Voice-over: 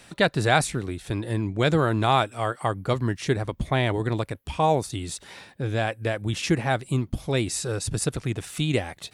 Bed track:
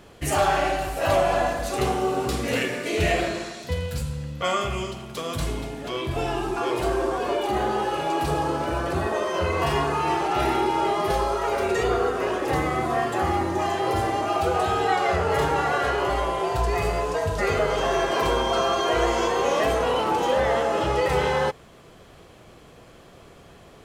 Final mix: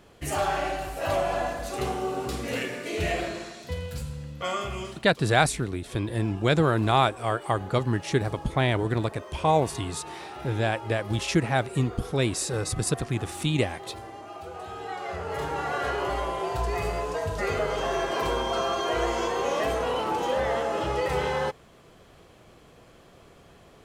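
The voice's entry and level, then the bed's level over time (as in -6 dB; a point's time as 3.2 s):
4.85 s, -0.5 dB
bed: 4.87 s -5.5 dB
5.12 s -17 dB
14.49 s -17 dB
15.88 s -4.5 dB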